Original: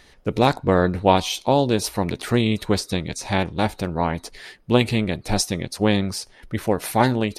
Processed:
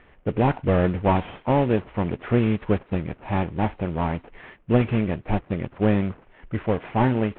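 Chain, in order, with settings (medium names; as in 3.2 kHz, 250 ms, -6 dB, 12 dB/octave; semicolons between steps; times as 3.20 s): CVSD coder 16 kbps; tape noise reduction on one side only decoder only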